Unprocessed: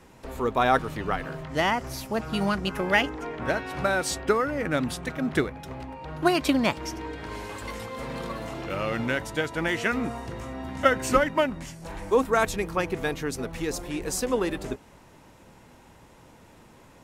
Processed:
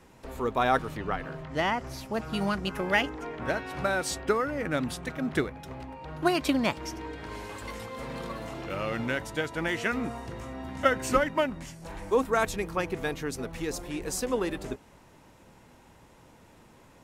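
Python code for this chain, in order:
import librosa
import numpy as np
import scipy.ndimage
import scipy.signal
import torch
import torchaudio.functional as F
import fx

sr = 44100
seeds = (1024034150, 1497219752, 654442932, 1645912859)

y = fx.high_shelf(x, sr, hz=fx.line((0.96, 5600.0), (2.13, 8400.0)), db=-9.0, at=(0.96, 2.13), fade=0.02)
y = y * librosa.db_to_amplitude(-3.0)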